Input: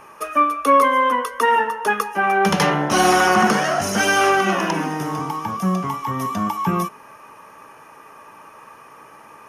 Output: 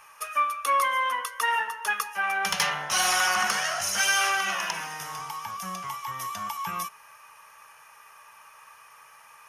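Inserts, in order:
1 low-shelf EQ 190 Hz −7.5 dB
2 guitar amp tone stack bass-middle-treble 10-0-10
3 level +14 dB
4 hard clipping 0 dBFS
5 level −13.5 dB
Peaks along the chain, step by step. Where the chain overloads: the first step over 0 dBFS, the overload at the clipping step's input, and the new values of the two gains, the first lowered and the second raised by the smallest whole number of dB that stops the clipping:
−5.0, −6.5, +7.5, 0.0, −13.5 dBFS
step 3, 7.5 dB
step 3 +6 dB, step 5 −5.5 dB

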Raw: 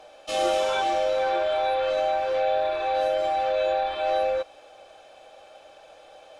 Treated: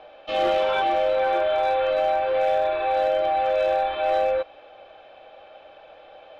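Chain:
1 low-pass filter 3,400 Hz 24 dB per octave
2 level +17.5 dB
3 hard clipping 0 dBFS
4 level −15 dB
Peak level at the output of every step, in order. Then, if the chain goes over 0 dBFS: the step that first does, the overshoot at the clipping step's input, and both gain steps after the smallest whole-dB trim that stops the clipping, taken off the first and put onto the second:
−12.5, +5.0, 0.0, −15.0 dBFS
step 2, 5.0 dB
step 2 +12.5 dB, step 4 −10 dB

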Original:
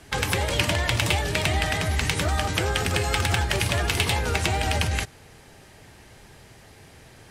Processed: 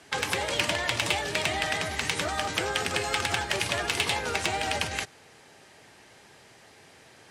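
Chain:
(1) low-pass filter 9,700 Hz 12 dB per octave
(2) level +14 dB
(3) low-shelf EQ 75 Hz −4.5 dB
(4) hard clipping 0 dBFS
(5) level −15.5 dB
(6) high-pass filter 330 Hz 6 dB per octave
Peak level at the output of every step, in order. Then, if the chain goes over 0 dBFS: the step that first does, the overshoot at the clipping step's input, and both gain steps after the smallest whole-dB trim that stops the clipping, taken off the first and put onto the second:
−10.5, +3.5, +4.0, 0.0, −15.5, −12.5 dBFS
step 2, 4.0 dB
step 2 +10 dB, step 5 −11.5 dB

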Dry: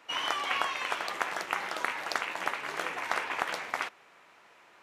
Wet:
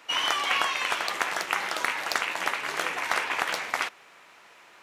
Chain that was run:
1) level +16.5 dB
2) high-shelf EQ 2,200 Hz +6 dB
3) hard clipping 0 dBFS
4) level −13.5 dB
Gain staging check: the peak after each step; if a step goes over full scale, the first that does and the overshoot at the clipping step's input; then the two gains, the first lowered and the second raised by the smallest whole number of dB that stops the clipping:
+3.5, +7.0, 0.0, −13.5 dBFS
step 1, 7.0 dB
step 1 +9.5 dB, step 4 −6.5 dB

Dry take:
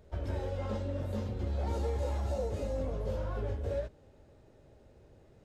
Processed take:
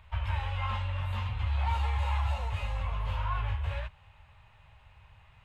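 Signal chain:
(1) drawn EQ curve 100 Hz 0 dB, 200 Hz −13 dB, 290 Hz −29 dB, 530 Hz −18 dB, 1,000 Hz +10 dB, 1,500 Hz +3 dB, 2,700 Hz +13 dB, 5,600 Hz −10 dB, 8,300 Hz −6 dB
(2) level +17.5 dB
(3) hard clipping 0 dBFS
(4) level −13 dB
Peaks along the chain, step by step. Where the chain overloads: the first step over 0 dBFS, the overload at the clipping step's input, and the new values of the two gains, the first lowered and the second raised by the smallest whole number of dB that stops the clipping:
−23.5, −6.0, −6.0, −19.0 dBFS
no step passes full scale

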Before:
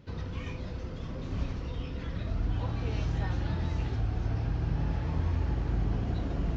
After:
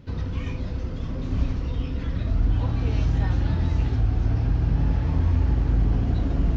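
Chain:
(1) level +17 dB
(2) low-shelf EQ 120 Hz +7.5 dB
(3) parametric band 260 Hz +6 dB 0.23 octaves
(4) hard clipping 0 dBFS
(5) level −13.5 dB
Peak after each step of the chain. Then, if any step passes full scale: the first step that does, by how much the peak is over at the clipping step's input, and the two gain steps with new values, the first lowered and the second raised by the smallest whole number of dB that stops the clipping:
−1.0, +3.5, +3.5, 0.0, −13.5 dBFS
step 2, 3.5 dB
step 1 +13 dB, step 5 −9.5 dB

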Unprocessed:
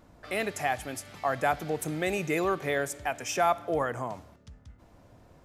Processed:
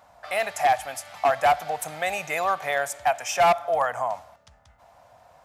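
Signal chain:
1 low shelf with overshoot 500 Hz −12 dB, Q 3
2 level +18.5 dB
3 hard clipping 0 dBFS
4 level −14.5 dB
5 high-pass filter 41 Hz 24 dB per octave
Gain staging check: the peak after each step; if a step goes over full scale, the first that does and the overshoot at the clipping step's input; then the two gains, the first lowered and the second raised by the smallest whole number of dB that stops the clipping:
−9.5, +9.0, 0.0, −14.5, −12.5 dBFS
step 2, 9.0 dB
step 2 +9.5 dB, step 4 −5.5 dB

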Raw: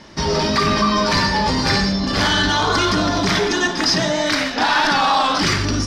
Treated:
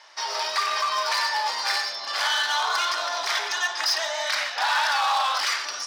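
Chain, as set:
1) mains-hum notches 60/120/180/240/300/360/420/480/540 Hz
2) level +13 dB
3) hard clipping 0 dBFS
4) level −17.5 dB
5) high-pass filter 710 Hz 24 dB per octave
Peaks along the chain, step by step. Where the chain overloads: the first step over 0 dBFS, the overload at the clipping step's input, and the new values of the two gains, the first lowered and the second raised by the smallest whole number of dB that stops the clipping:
−5.5, +7.5, 0.0, −17.5, −12.0 dBFS
step 2, 7.5 dB
step 2 +5 dB, step 4 −9.5 dB

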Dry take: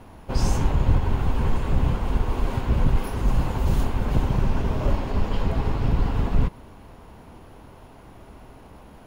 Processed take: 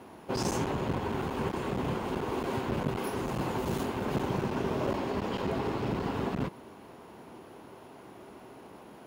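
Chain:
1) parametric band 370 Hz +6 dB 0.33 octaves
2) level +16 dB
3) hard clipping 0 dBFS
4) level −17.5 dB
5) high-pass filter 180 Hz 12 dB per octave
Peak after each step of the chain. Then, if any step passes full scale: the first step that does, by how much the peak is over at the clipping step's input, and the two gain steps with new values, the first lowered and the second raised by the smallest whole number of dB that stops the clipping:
−7.5, +8.5, 0.0, −17.5, −15.0 dBFS
step 2, 8.5 dB
step 2 +7 dB, step 4 −8.5 dB

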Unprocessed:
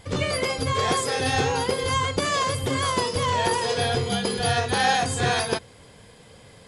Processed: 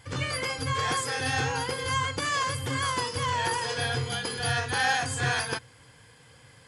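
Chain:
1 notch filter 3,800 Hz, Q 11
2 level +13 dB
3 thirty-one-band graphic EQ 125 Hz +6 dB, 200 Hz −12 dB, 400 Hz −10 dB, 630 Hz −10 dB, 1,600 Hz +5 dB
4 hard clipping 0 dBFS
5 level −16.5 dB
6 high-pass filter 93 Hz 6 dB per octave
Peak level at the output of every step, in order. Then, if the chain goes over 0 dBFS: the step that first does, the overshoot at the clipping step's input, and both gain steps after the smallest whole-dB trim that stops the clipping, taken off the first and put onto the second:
−8.5, +4.5, +4.0, 0.0, −16.5, −15.5 dBFS
step 2, 4.0 dB
step 2 +9 dB, step 5 −12.5 dB

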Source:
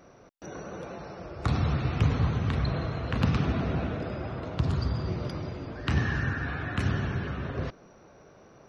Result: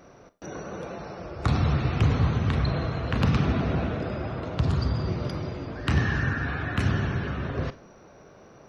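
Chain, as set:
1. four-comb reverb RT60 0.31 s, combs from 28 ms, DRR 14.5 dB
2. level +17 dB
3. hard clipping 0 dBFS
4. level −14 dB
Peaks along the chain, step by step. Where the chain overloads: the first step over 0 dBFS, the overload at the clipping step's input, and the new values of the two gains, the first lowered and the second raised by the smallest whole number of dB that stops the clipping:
−11.0, +6.0, 0.0, −14.0 dBFS
step 2, 6.0 dB
step 2 +11 dB, step 4 −8 dB

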